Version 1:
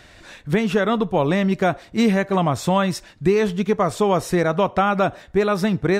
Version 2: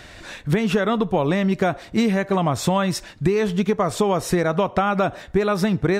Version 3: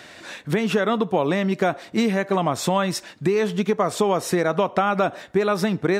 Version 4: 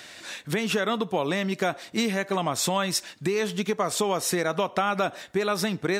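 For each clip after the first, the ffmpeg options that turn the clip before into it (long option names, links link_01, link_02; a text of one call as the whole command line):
ffmpeg -i in.wav -af "acompressor=threshold=-21dB:ratio=6,volume=5dB" out.wav
ffmpeg -i in.wav -af "highpass=190" out.wav
ffmpeg -i in.wav -af "highshelf=frequency=2300:gain=10.5,volume=-6dB" out.wav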